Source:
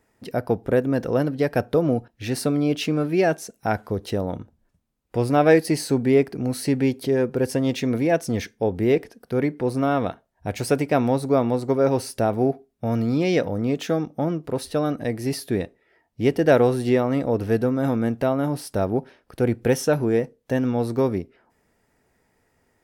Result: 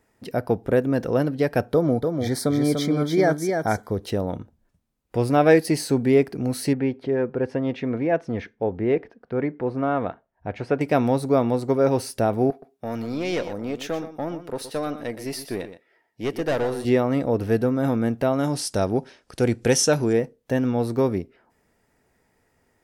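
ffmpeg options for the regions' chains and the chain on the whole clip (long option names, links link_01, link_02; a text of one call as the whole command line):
ffmpeg -i in.wav -filter_complex "[0:a]asettb=1/sr,asplit=3[link_01][link_02][link_03];[link_01]atrim=end=1.734[link_04];[link_02]atrim=start=1.73:end=3.93,asetpts=PTS-STARTPTS,afade=type=in:duration=0.004:curve=qsin,afade=type=out:start_time=2.196:duration=0.004:curve=qsin,asuperstop=centerf=2700:order=20:qfactor=4.1,aecho=1:1:293:0.562,atrim=end_sample=97020[link_05];[link_03]atrim=start=3.926[link_06];[link_04][link_05]acrossfade=duration=0.004:curve1=hsin:curve2=qsin[link_07];[link_07][link_06]acrossfade=duration=0.004:curve1=qsin:curve2=hsin,asettb=1/sr,asplit=3[link_08][link_09][link_10];[link_08]atrim=end=6.734[link_11];[link_09]atrim=start=6.73:end=10.81,asetpts=PTS-STARTPTS,afade=type=in:duration=0.004:curve=qsin,afade=type=out:start_time=4.076:duration=0.004:curve=qsin,lowpass=2000,lowshelf=frequency=370:gain=-4.5[link_12];[link_10]atrim=start=10.806[link_13];[link_11][link_12]acrossfade=duration=0.004:curve1=hsin:curve2=qsin[link_14];[link_14][link_13]acrossfade=duration=0.004:curve1=qsin:curve2=hsin,asettb=1/sr,asplit=3[link_15][link_16][link_17];[link_15]atrim=end=12.504[link_18];[link_16]atrim=start=12.5:end=16.85,asetpts=PTS-STARTPTS,afade=type=in:duration=0.004:curve=qsin,afade=type=out:start_time=4.346:duration=0.004:curve=qsin,highpass=frequency=400:poles=1,aeval=exprs='(tanh(8.91*val(0)+0.35)-tanh(0.35))/8.91':channel_layout=same,aecho=1:1:121:0.251,atrim=end_sample=191835[link_19];[link_17]atrim=start=16.846[link_20];[link_18][link_19]acrossfade=duration=0.004:curve1=hsin:curve2=qsin[link_21];[link_21][link_20]acrossfade=duration=0.004:curve1=qsin:curve2=hsin,asettb=1/sr,asplit=3[link_22][link_23][link_24];[link_22]atrim=end=18.334[link_25];[link_23]atrim=start=18.33:end=20.13,asetpts=PTS-STARTPTS,afade=type=in:duration=0.004:curve=qsin,afade=type=out:start_time=1.796:duration=0.004:curve=qsin,lowpass=10000,equalizer=frequency=6900:width=0.6:gain=12.5[link_26];[link_24]atrim=start=20.126[link_27];[link_25][link_26]acrossfade=duration=0.004:curve1=hsin:curve2=qsin[link_28];[link_28][link_27]acrossfade=duration=0.004:curve1=qsin:curve2=hsin" out.wav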